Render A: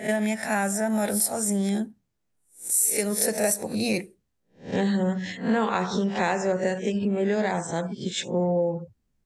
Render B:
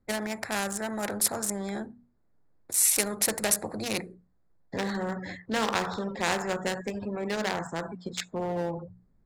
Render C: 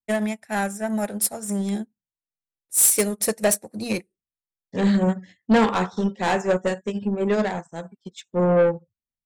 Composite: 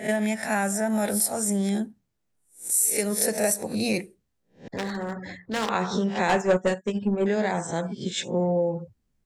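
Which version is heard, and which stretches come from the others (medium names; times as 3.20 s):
A
4.68–5.69 s: from B
6.29–7.26 s: from C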